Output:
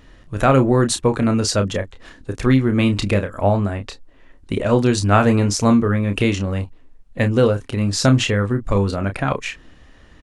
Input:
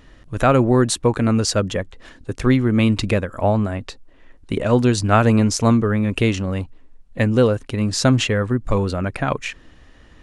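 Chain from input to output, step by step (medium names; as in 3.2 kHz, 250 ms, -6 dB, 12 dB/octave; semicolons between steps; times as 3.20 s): doubling 30 ms -8 dB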